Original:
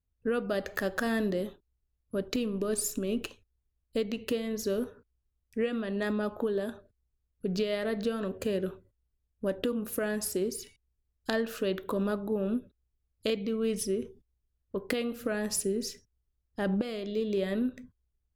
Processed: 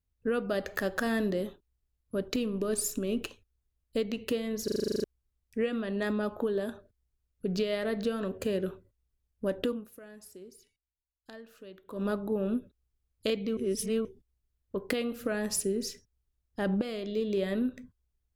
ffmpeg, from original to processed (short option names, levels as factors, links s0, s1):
-filter_complex "[0:a]asplit=15[s0][s1][s2][s3][s4][s5][s6][s7][s8][s9][s10][s11][s12][s13][s14];[s0]atrim=end=4.682[s15];[s1]atrim=start=4.638:end=4.682[s16];[s2]atrim=start=4.638:end=4.682[s17];[s3]atrim=start=4.638:end=4.682[s18];[s4]atrim=start=4.638:end=4.682[s19];[s5]atrim=start=4.638:end=4.682[s20];[s6]atrim=start=4.638:end=4.682[s21];[s7]atrim=start=4.638:end=4.682[s22];[s8]atrim=start=4.638:end=4.682[s23];[s9]atrim=start=4.638:end=4.682[s24];[s10]atrim=start=5.038:end=9.93,asetpts=PTS-STARTPTS,afade=t=out:st=4.662:d=0.23:c=qua:silence=0.125893[s25];[s11]atrim=start=9.93:end=11.83,asetpts=PTS-STARTPTS,volume=0.126[s26];[s12]atrim=start=11.83:end=13.572,asetpts=PTS-STARTPTS,afade=t=in:d=0.23:c=qua:silence=0.125893[s27];[s13]atrim=start=13.568:end=14.052,asetpts=PTS-STARTPTS,areverse[s28];[s14]atrim=start=14.048[s29];[s15][s16]acrossfade=d=0.004:c1=hsin:c2=hsin[s30];[s30][s17]acrossfade=d=0.004:c1=hsin:c2=hsin[s31];[s31][s18]acrossfade=d=0.004:c1=hsin:c2=hsin[s32];[s32][s19]acrossfade=d=0.004:c1=hsin:c2=hsin[s33];[s33][s20]acrossfade=d=0.004:c1=hsin:c2=hsin[s34];[s34][s21]acrossfade=d=0.004:c1=hsin:c2=hsin[s35];[s35][s22]acrossfade=d=0.004:c1=hsin:c2=hsin[s36];[s36][s23]acrossfade=d=0.004:c1=hsin:c2=hsin[s37];[s37][s24]acrossfade=d=0.004:c1=hsin:c2=hsin[s38];[s25][s26][s27]concat=n=3:v=0:a=1[s39];[s38][s39]acrossfade=d=0.004:c1=hsin:c2=hsin[s40];[s40][s28]acrossfade=d=0.004:c1=hsin:c2=hsin[s41];[s41][s29]acrossfade=d=0.004:c1=hsin:c2=hsin"